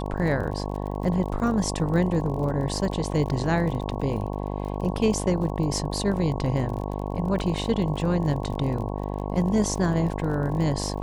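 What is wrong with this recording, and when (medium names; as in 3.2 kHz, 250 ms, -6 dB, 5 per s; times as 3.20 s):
buzz 50 Hz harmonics 22 -30 dBFS
crackle 39 per s -33 dBFS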